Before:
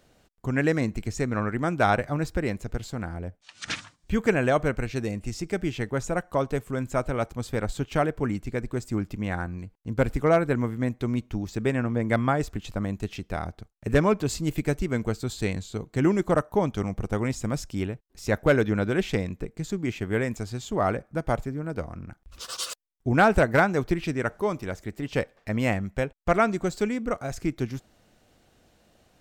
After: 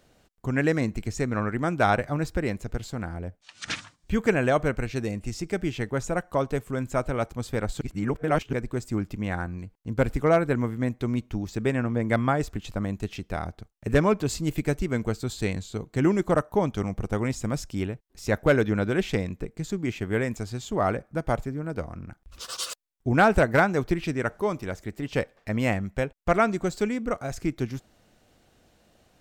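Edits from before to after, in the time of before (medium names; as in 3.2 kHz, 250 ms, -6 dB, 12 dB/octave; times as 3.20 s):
7.81–8.53 s: reverse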